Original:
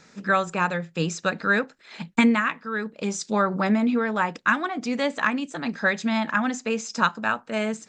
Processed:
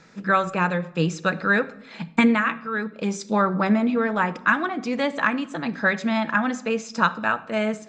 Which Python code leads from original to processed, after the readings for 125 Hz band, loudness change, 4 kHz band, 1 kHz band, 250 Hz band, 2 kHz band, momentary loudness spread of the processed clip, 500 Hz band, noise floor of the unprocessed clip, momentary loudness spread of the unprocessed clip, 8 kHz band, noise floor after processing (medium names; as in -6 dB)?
+3.5 dB, +1.5 dB, -0.5 dB, +1.5 dB, +1.5 dB, +1.5 dB, 7 LU, +2.0 dB, -55 dBFS, 7 LU, -4.5 dB, -45 dBFS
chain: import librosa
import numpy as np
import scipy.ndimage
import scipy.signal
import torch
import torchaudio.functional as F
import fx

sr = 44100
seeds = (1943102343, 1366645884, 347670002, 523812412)

y = fx.high_shelf(x, sr, hz=5800.0, db=-11.5)
y = fx.room_shoebox(y, sr, seeds[0], volume_m3=2700.0, walls='furnished', distance_m=0.7)
y = y * 10.0 ** (2.0 / 20.0)